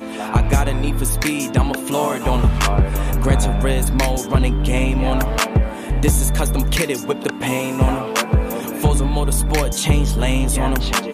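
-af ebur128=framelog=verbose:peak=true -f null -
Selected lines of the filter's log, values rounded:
Integrated loudness:
  I:         -19.0 LUFS
  Threshold: -29.0 LUFS
Loudness range:
  LRA:         1.2 LU
  Threshold: -39.0 LUFS
  LRA low:   -19.7 LUFS
  LRA high:  -18.4 LUFS
True peak:
  Peak:       -4.7 dBFS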